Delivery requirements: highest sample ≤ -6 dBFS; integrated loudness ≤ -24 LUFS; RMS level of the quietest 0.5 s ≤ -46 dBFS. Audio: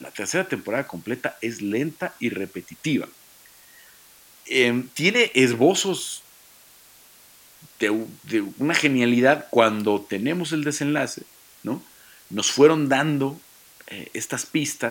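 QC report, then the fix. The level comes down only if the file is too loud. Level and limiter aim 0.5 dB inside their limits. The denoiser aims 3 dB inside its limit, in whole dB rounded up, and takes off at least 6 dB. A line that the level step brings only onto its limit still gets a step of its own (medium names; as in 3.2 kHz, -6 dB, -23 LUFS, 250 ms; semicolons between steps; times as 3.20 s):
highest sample -2.0 dBFS: fail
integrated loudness -22.5 LUFS: fail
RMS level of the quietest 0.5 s -51 dBFS: pass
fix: trim -2 dB; peak limiter -6.5 dBFS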